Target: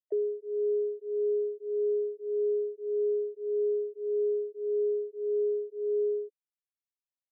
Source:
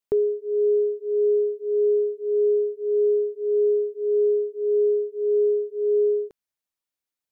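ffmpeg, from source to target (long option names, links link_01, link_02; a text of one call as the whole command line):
ffmpeg -i in.wav -af "afftfilt=real='re*gte(hypot(re,im),0.0708)':imag='im*gte(hypot(re,im),0.0708)':win_size=1024:overlap=0.75,asuperpass=centerf=490:order=12:qfactor=0.99,acompressor=mode=upward:threshold=-39dB:ratio=2.5,volume=-8dB" out.wav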